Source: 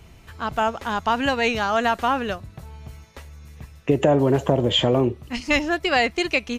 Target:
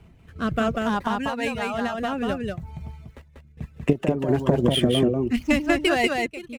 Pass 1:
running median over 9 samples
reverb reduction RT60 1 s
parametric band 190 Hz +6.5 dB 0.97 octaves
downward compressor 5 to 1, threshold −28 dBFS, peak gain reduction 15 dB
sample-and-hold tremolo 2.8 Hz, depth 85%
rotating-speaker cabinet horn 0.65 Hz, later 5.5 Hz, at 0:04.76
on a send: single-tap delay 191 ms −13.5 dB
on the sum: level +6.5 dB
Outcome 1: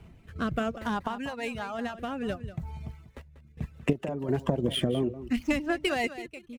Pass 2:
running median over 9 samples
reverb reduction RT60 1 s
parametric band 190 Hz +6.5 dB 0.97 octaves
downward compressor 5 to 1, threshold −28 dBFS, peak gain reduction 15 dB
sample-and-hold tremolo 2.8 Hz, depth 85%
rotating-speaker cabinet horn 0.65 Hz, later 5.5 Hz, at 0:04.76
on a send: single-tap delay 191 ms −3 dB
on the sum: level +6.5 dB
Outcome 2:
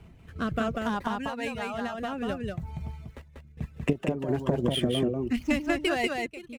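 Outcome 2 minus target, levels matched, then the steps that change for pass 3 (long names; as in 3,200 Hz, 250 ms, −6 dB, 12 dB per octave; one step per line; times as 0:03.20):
downward compressor: peak gain reduction +6.5 dB
change: downward compressor 5 to 1, threshold −20 dBFS, peak gain reduction 8.5 dB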